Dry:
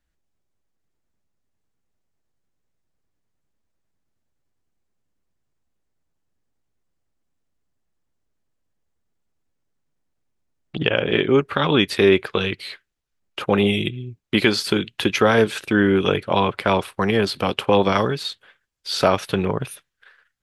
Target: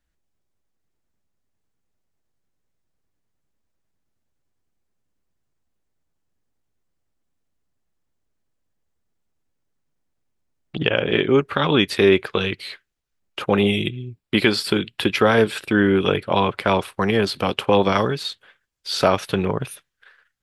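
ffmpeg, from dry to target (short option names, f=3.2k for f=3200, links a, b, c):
-filter_complex "[0:a]asettb=1/sr,asplit=3[a][b][c];[a]atrim=end=14.094[d];[b]atrim=start=14.09:end=16.39,asetpts=PTS-STARTPTS,afade=t=in:d=0.004:c=qsin,afade=t=out:st=2.296:d=0.004:c=qsin,bandreject=f=6.3k:w=5.7[e];[c]atrim=start=16.386[f];[d][e]acrossfade=d=0.004:c1=hsin:c2=qsin[g];[g][f]acrossfade=d=0.004:c1=qsin:c2=hsin"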